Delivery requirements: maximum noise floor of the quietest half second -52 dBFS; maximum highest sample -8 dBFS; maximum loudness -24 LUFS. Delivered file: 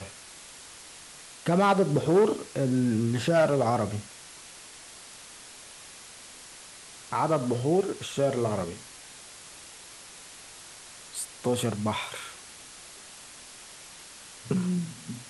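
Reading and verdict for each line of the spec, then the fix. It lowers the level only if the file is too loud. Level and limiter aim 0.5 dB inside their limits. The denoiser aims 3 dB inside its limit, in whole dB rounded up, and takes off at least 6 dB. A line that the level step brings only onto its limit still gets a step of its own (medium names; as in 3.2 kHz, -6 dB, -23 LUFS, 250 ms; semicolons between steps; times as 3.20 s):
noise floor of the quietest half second -47 dBFS: fail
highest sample -13.0 dBFS: pass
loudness -27.0 LUFS: pass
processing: noise reduction 8 dB, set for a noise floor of -47 dBFS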